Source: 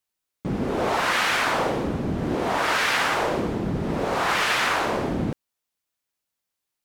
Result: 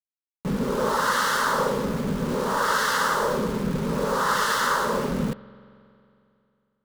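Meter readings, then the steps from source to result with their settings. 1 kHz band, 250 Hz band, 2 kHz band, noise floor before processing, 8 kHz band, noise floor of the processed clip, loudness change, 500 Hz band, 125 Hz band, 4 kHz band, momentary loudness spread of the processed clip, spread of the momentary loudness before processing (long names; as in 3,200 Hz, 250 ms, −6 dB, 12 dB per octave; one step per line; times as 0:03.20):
+1.0 dB, 0.0 dB, −2.5 dB, −84 dBFS, +2.5 dB, below −85 dBFS, −0.5 dB, +0.5 dB, −0.5 dB, −3.0 dB, 6 LU, 8 LU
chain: phaser with its sweep stopped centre 480 Hz, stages 8
centre clipping without the shift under −35 dBFS
spring reverb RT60 2.7 s, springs 45 ms, chirp 45 ms, DRR 18.5 dB
level +3 dB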